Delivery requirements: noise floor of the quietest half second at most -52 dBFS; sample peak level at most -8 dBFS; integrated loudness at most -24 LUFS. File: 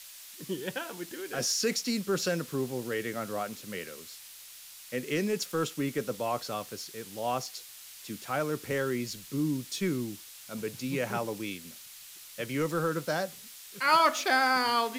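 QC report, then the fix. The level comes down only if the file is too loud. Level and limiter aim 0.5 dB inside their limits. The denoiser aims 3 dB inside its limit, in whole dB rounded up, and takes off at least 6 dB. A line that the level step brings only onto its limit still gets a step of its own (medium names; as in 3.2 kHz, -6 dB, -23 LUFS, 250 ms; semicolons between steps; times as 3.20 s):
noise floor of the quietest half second -49 dBFS: fail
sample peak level -13.0 dBFS: pass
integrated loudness -31.0 LUFS: pass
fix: noise reduction 6 dB, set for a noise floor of -49 dBFS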